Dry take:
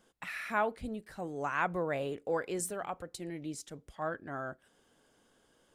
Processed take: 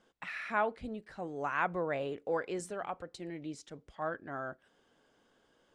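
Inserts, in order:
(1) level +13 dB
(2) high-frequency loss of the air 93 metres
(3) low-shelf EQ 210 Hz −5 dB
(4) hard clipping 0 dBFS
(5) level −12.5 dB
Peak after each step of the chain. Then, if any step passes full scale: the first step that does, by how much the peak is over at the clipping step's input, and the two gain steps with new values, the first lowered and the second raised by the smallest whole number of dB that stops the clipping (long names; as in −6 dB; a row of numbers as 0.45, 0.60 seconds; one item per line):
−4.0, −4.5, −4.5, −4.5, −17.0 dBFS
no step passes full scale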